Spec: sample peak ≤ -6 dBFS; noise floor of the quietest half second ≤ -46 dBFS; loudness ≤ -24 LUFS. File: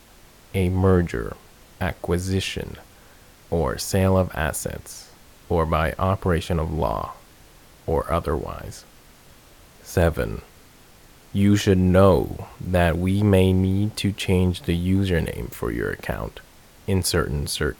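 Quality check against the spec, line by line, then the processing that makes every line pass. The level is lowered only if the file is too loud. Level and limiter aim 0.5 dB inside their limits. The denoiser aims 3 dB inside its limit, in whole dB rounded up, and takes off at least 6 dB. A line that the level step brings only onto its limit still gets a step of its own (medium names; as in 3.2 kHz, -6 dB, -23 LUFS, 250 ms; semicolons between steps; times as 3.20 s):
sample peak -4.5 dBFS: fail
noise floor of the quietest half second -50 dBFS: pass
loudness -22.5 LUFS: fail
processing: trim -2 dB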